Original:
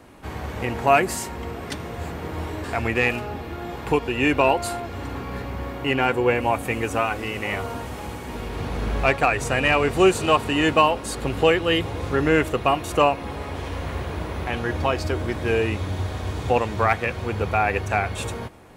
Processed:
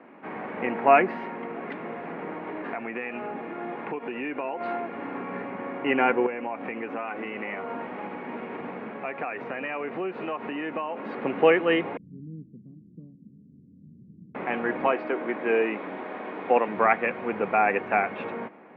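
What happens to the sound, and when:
0:01.33–0:04.61: downward compressor, threshold −27 dBFS
0:06.26–0:11.02: downward compressor, threshold −27 dBFS
0:11.97–0:14.35: inverse Chebyshev low-pass filter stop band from 770 Hz, stop band 70 dB
0:14.87–0:16.68: band-pass filter 240–6,200 Hz
whole clip: elliptic band-pass filter 200–2,300 Hz, stop band 50 dB

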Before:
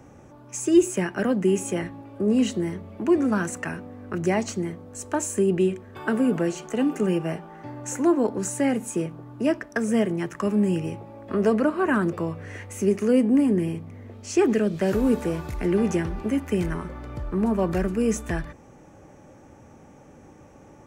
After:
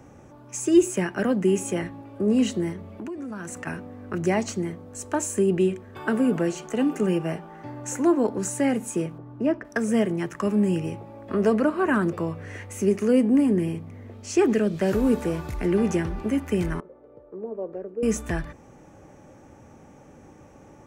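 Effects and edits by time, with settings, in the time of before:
0:02.72–0:03.67: downward compressor 10 to 1, threshold −31 dBFS
0:09.18–0:09.65: low-pass filter 1,200 Hz 6 dB per octave
0:16.80–0:18.03: resonant band-pass 480 Hz, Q 4.7

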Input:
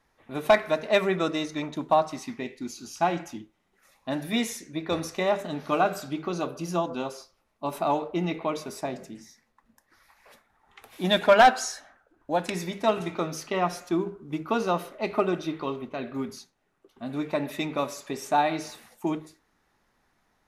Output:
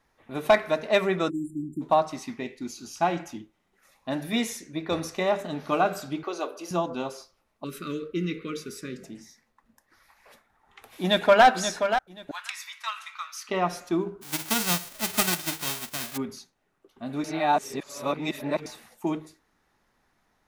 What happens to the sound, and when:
0:01.30–0:01.82: time-frequency box erased 400–7,100 Hz
0:06.23–0:06.71: high-pass filter 350 Hz 24 dB per octave
0:07.64–0:09.04: elliptic band-stop filter 470–1,300 Hz, stop band 60 dB
0:11.01–0:11.45: delay throw 530 ms, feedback 20%, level −8 dB
0:12.31–0:13.49: elliptic high-pass filter 1,100 Hz, stop band 70 dB
0:14.21–0:16.16: spectral envelope flattened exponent 0.1
0:17.24–0:18.66: reverse

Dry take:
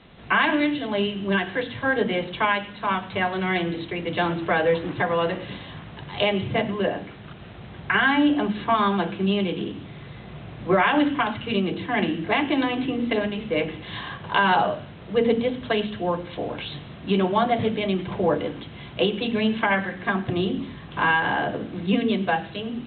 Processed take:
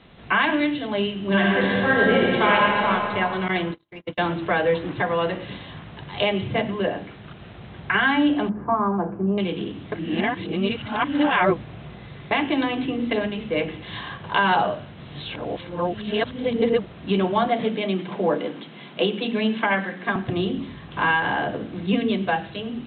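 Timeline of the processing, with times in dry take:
0:01.22–0:02.87: thrown reverb, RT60 2.8 s, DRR −4.5 dB
0:03.48–0:04.18: noise gate −27 dBFS, range −42 dB
0:08.49–0:09.38: low-pass filter 1,200 Hz 24 dB per octave
0:09.92–0:12.31: reverse
0:14.97–0:16.97: reverse
0:17.48–0:20.16: Butterworth high-pass 160 Hz

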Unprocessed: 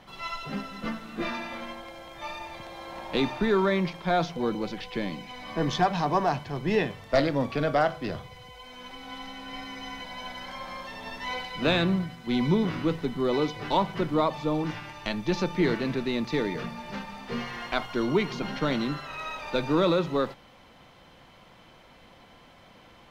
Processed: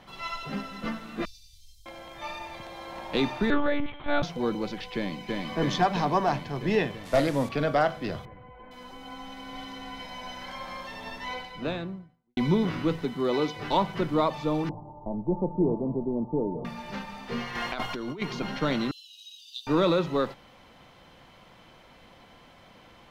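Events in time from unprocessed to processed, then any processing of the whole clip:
0:01.25–0:01.86: inverse Chebyshev band-stop filter 260–1,700 Hz, stop band 60 dB
0:03.50–0:04.23: one-pitch LPC vocoder at 8 kHz 290 Hz
0:04.95–0:05.38: delay throw 330 ms, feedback 75%, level −1.5 dB
0:07.05–0:07.49: linear delta modulator 64 kbit/s, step −37.5 dBFS
0:08.25–0:10.42: multiband delay without the direct sound lows, highs 460 ms, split 1,900 Hz
0:10.99–0:12.37: fade out and dull
0:13.05–0:13.59: high-pass filter 130 Hz 6 dB per octave
0:14.69–0:16.65: Butterworth low-pass 970 Hz 72 dB per octave
0:17.55–0:18.22: compressor whose output falls as the input rises −33 dBFS
0:18.91–0:19.67: Chebyshev high-pass filter 2,800 Hz, order 10

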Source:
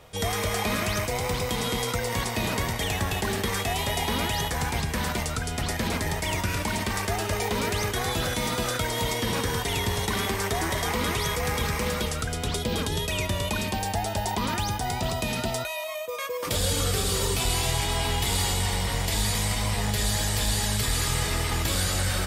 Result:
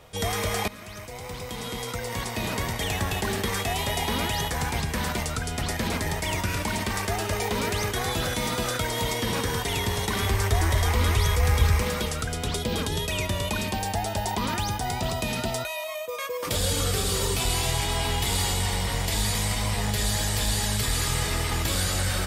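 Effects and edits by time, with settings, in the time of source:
0:00.68–0:02.95: fade in, from −18 dB
0:10.22–0:11.82: low shelf with overshoot 120 Hz +9.5 dB, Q 1.5

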